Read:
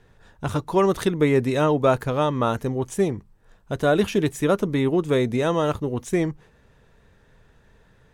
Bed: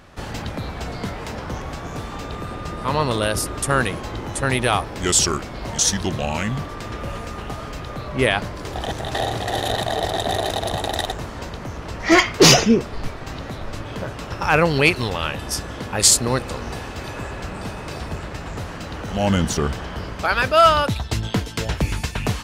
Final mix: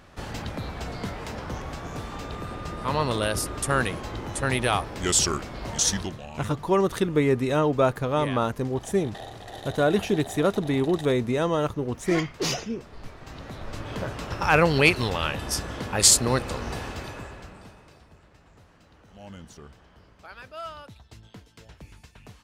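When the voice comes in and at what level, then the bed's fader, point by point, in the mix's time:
5.95 s, -2.5 dB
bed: 5.99 s -4.5 dB
6.21 s -16.5 dB
12.74 s -16.5 dB
13.96 s -2.5 dB
16.90 s -2.5 dB
18.07 s -24.5 dB

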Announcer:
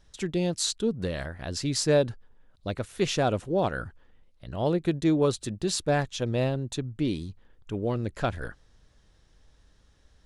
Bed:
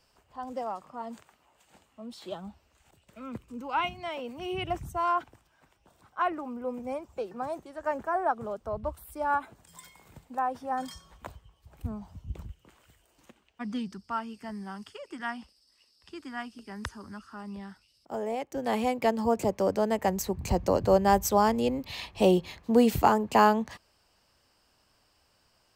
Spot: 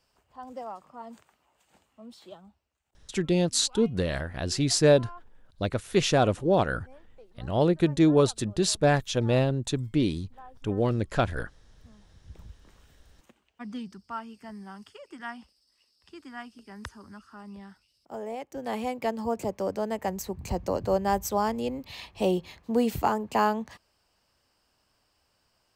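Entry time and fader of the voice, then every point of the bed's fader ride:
2.95 s, +3.0 dB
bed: 2.13 s -4 dB
2.82 s -19 dB
11.98 s -19 dB
12.53 s -3.5 dB

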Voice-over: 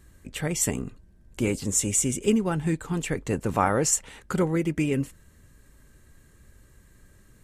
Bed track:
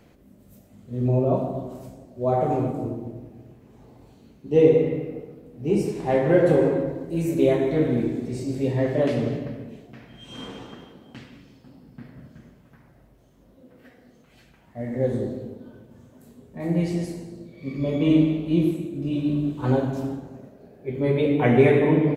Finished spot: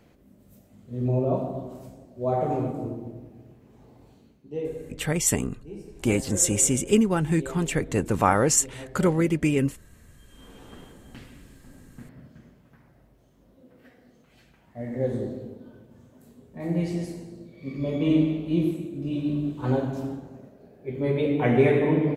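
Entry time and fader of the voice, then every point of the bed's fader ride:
4.65 s, +2.5 dB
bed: 4.17 s -3 dB
4.74 s -18.5 dB
10.33 s -18.5 dB
10.78 s -3 dB

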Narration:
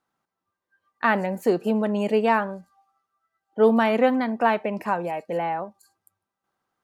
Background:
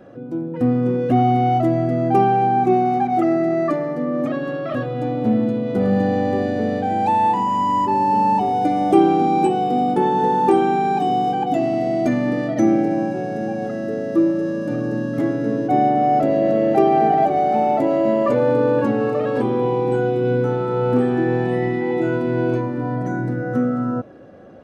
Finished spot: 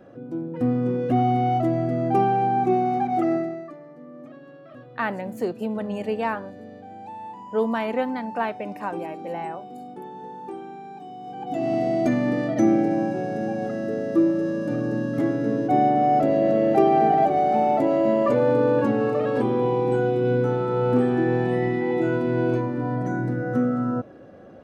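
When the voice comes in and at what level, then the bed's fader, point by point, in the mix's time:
3.95 s, -5.5 dB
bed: 3.36 s -4.5 dB
3.70 s -20.5 dB
11.18 s -20.5 dB
11.72 s -2.5 dB

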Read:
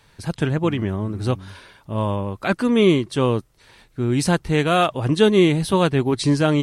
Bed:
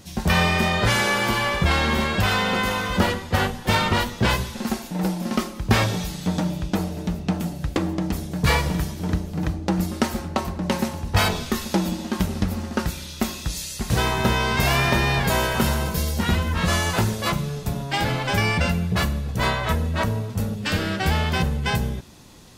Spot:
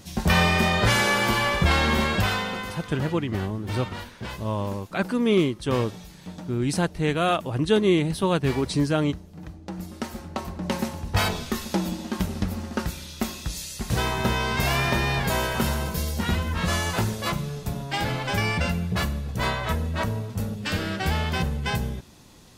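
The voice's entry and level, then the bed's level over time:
2.50 s, -5.0 dB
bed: 2.14 s -0.5 dB
2.88 s -15 dB
9.46 s -15 dB
10.74 s -3.5 dB

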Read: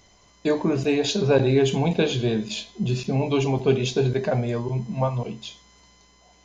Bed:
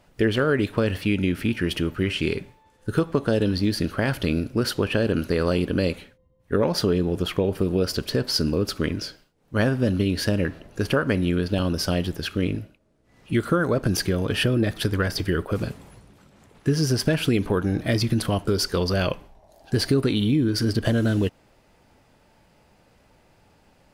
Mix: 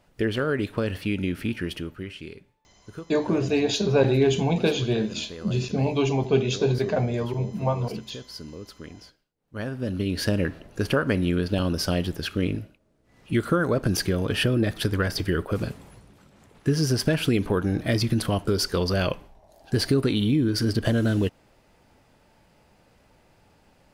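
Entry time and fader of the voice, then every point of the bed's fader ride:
2.65 s, -1.0 dB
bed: 1.56 s -4 dB
2.34 s -16.5 dB
9.25 s -16.5 dB
10.25 s -1 dB

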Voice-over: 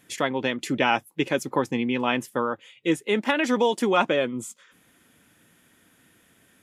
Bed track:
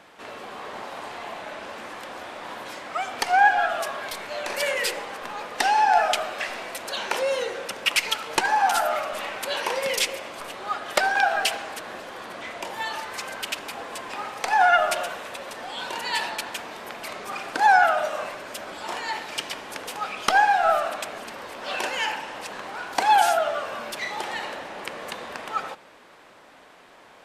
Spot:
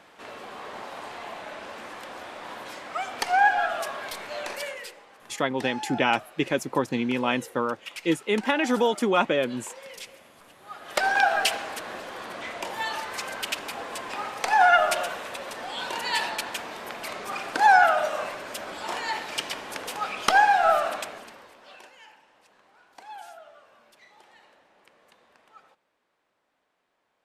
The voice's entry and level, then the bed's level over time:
5.20 s, -1.0 dB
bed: 4.44 s -2.5 dB
4.95 s -17.5 dB
10.59 s -17.5 dB
11.09 s 0 dB
20.95 s 0 dB
21.97 s -24.5 dB

